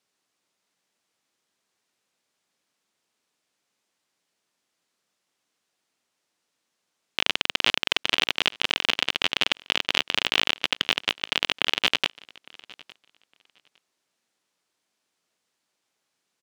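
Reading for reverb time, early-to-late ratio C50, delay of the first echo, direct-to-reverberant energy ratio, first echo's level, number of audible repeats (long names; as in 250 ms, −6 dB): no reverb audible, no reverb audible, 859 ms, no reverb audible, −23.5 dB, 1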